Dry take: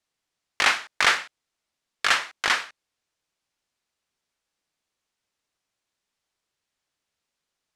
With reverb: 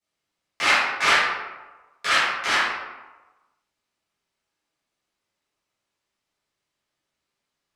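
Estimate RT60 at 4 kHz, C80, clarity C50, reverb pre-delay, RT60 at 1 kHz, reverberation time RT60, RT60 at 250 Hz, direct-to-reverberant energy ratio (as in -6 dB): 0.65 s, 2.5 dB, -1.5 dB, 7 ms, 1.2 s, 1.2 s, 1.1 s, -14.0 dB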